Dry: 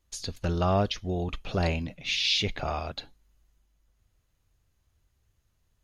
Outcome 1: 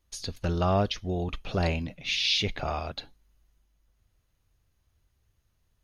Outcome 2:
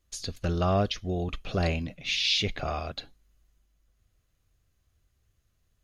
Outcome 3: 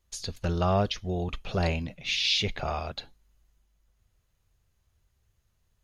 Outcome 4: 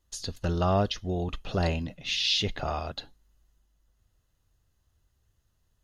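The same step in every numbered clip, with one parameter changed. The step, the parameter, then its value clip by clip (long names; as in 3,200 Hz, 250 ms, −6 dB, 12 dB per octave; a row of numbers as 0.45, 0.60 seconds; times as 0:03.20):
notch filter, centre frequency: 7,400, 900, 290, 2,300 Hertz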